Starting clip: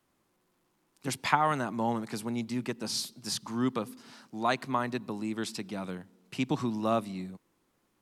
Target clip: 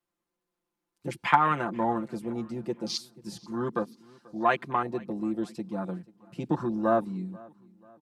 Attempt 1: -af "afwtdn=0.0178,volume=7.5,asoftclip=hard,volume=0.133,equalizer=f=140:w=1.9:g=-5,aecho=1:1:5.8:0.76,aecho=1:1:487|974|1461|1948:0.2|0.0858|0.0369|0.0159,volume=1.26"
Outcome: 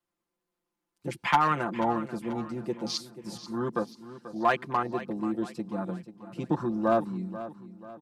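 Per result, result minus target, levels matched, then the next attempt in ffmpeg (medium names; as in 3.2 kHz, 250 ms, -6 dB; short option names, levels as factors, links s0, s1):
overload inside the chain: distortion +27 dB; echo-to-direct +10 dB
-af "afwtdn=0.0178,volume=2.99,asoftclip=hard,volume=0.335,equalizer=f=140:w=1.9:g=-5,aecho=1:1:5.8:0.76,aecho=1:1:487|974|1461|1948:0.2|0.0858|0.0369|0.0159,volume=1.26"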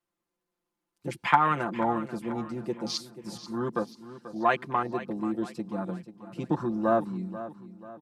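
echo-to-direct +10 dB
-af "afwtdn=0.0178,volume=2.99,asoftclip=hard,volume=0.335,equalizer=f=140:w=1.9:g=-5,aecho=1:1:5.8:0.76,aecho=1:1:487|974|1461:0.0631|0.0271|0.0117,volume=1.26"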